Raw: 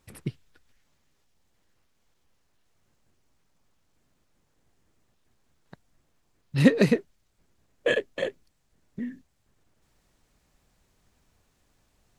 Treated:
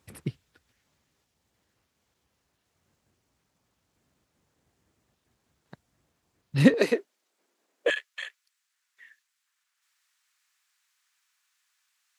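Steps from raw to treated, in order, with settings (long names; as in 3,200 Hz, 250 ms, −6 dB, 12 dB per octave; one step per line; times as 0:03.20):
high-pass filter 53 Hz 24 dB per octave, from 0:06.74 300 Hz, from 0:07.90 1,300 Hz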